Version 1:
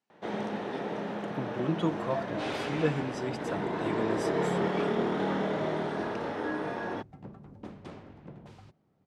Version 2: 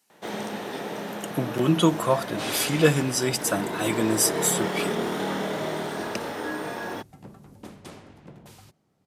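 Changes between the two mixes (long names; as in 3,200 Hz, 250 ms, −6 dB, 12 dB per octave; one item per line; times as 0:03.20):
speech +8.5 dB
master: remove head-to-tape spacing loss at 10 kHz 23 dB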